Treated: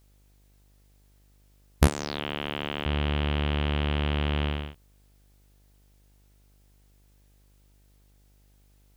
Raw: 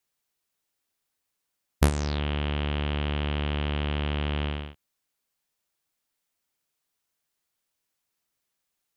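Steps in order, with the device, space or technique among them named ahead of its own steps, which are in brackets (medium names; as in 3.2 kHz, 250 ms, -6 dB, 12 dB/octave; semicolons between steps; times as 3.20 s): 1.87–2.86 s: Bessel high-pass 280 Hz, order 2; video cassette with head-switching buzz (mains buzz 50 Hz, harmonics 18, -62 dBFS -8 dB/octave; white noise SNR 39 dB); trim +1.5 dB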